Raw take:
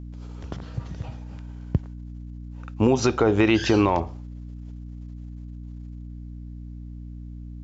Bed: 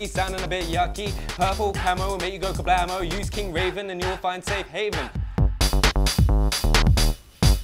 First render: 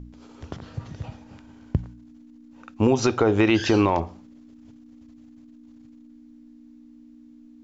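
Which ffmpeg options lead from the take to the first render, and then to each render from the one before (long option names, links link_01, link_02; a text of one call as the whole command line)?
ffmpeg -i in.wav -af "bandreject=frequency=60:width_type=h:width=4,bandreject=frequency=120:width_type=h:width=4,bandreject=frequency=180:width_type=h:width=4" out.wav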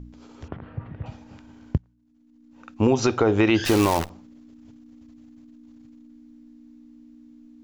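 ffmpeg -i in.wav -filter_complex "[0:a]asettb=1/sr,asplit=3[link_01][link_02][link_03];[link_01]atrim=end=0.484[link_04];[link_02]atrim=start=0.48:end=1.06,asetpts=PTS-STARTPTS,afade=type=in:duration=0.004:curve=qsin,afade=type=out:start_time=0.576:duration=0.004:curve=qsin,lowpass=frequency=2400:width=0.5412,lowpass=frequency=2400:width=1.3066[link_05];[link_03]atrim=start=1.056[link_06];[link_04][link_05]acrossfade=duration=0.004:curve1=hsin:curve2=qsin[link_07];[link_07][link_06]acrossfade=duration=0.004:curve1=qsin:curve2=hsin,asettb=1/sr,asplit=3[link_08][link_09][link_10];[link_08]atrim=end=3.654[link_11];[link_09]atrim=start=3.65:end=4.1,asetpts=PTS-STARTPTS,afade=type=in:duration=0.004:curve=qsin,afade=type=out:start_time=0.446:duration=0.004:curve=qsin,acrusher=bits=5:dc=4:mix=0:aa=0.000001[link_12];[link_10]atrim=start=4.096[link_13];[link_11][link_12]acrossfade=duration=0.004:curve1=hsin:curve2=qsin[link_14];[link_14][link_13]acrossfade=duration=0.004:curve1=qsin:curve2=hsin,asplit=2[link_15][link_16];[link_15]atrim=end=1.78,asetpts=PTS-STARTPTS,afade=type=out:start_time=1.776:duration=0.004:curve=hsin:silence=0.0794328[link_17];[link_16]atrim=start=1.78,asetpts=PTS-STARTPTS,afade=type=in:duration=0.91:curve=qua:silence=0.0794328[link_18];[link_17][link_18]concat=n=2:v=0:a=1" out.wav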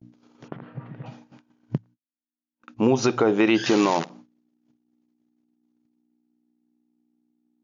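ffmpeg -i in.wav -af "afftfilt=real='re*between(b*sr/4096,110,7100)':imag='im*between(b*sr/4096,110,7100)':win_size=4096:overlap=0.75,agate=range=-41dB:threshold=-45dB:ratio=16:detection=peak" out.wav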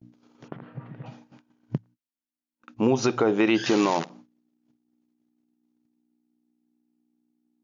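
ffmpeg -i in.wav -af "volume=-2dB" out.wav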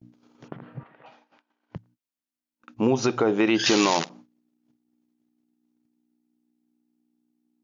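ffmpeg -i in.wav -filter_complex "[0:a]asettb=1/sr,asplit=3[link_01][link_02][link_03];[link_01]atrim=end=0.834[link_04];[link_02]atrim=start=0.83:end=1.76,asetpts=PTS-STARTPTS,afade=type=in:duration=0.004:curve=qsin,afade=type=out:start_time=0.926:duration=0.004:curve=qsin,highpass=620,lowpass=4100[link_05];[link_03]atrim=start=1.756[link_06];[link_04][link_05]acrossfade=duration=0.004:curve1=hsin:curve2=qsin[link_07];[link_07][link_06]acrossfade=duration=0.004:curve1=qsin:curve2=hsin,asettb=1/sr,asplit=3[link_08][link_09][link_10];[link_08]atrim=end=3.594[link_11];[link_09]atrim=start=3.59:end=4.09,asetpts=PTS-STARTPTS,afade=type=in:duration=0.004:curve=qsin,afade=type=out:start_time=0.496:duration=0.004:curve=qsin,equalizer=frequency=5300:width=0.4:gain=10[link_12];[link_10]atrim=start=4.086[link_13];[link_11][link_12]acrossfade=duration=0.004:curve1=hsin:curve2=qsin[link_14];[link_14][link_13]acrossfade=duration=0.004:curve1=qsin:curve2=hsin" out.wav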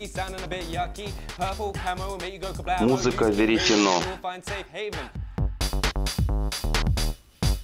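ffmpeg -i in.wav -i bed.wav -filter_complex "[1:a]volume=-6dB[link_01];[0:a][link_01]amix=inputs=2:normalize=0" out.wav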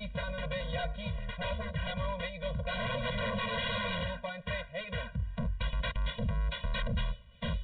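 ffmpeg -i in.wav -af "aresample=8000,aeval=exprs='0.0531*(abs(mod(val(0)/0.0531+3,4)-2)-1)':channel_layout=same,aresample=44100,afftfilt=real='re*eq(mod(floor(b*sr/1024/230),2),0)':imag='im*eq(mod(floor(b*sr/1024/230),2),0)':win_size=1024:overlap=0.75" out.wav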